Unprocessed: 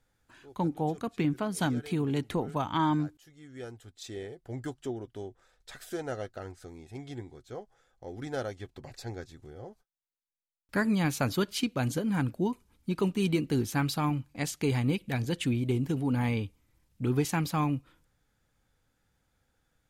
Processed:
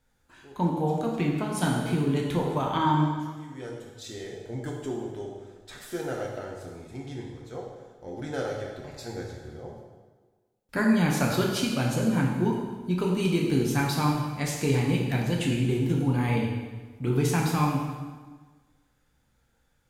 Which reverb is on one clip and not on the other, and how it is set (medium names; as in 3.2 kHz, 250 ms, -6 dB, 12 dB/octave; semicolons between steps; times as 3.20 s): plate-style reverb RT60 1.4 s, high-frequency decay 0.85×, DRR -2 dB